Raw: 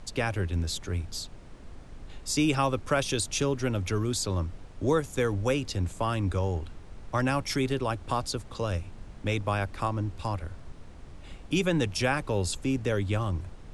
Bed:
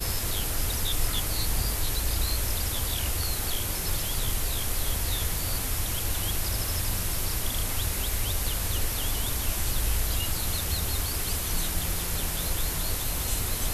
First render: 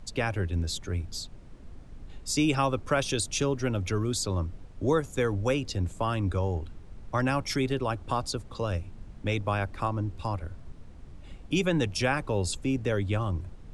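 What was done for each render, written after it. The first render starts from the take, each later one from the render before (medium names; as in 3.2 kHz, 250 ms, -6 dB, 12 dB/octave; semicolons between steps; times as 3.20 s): noise reduction 6 dB, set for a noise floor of -46 dBFS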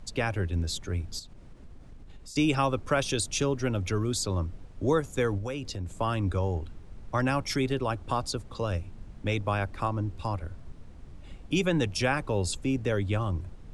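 1.19–2.36 s: compression, threshold -42 dBFS; 5.38–6.00 s: compression 3:1, threshold -32 dBFS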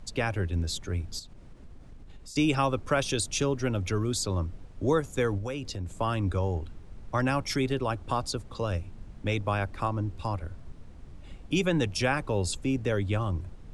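no audible change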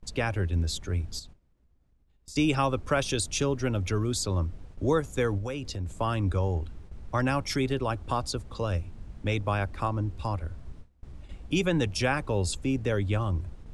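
peaking EQ 61 Hz +6.5 dB 0.77 oct; gate with hold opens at -35 dBFS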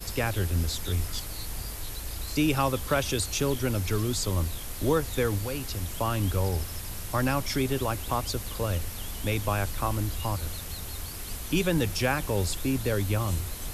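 add bed -8.5 dB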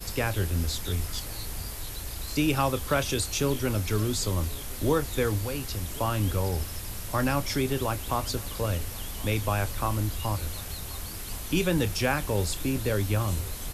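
doubling 28 ms -13 dB; delay 1078 ms -22 dB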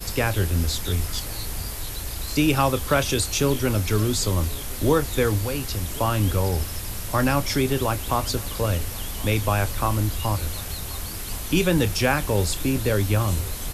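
trim +5 dB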